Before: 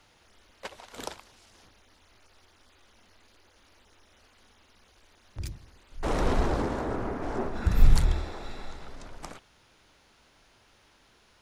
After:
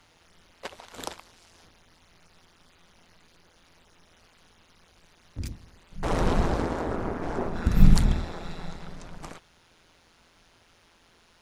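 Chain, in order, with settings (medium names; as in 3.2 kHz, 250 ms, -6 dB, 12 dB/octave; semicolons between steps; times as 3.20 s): AM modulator 170 Hz, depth 55%; trim +4.5 dB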